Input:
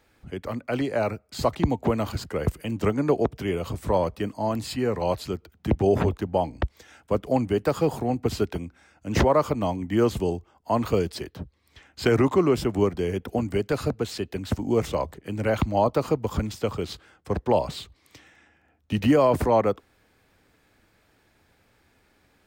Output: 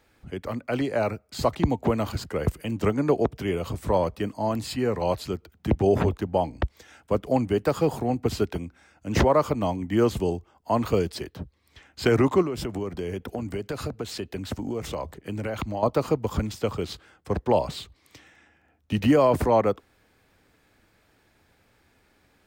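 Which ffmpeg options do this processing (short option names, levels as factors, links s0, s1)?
-filter_complex "[0:a]asettb=1/sr,asplit=3[s0][s1][s2];[s0]atrim=end=12.424[s3];[s1]atrim=start=12.42:end=15.83,asetpts=PTS-STARTPTS,afade=t=in:d=0.004:c=qsin,afade=t=out:st=3.406:d=0.004:c=qsin,acompressor=threshold=0.0501:ratio=5:attack=3.2:release=140:knee=1:detection=peak[s4];[s2]atrim=start=15.826[s5];[s3][s4]acrossfade=d=0.004:c1=hsin:c2=qsin[s6];[s6][s5]acrossfade=d=0.004:c1=qsin:c2=hsin"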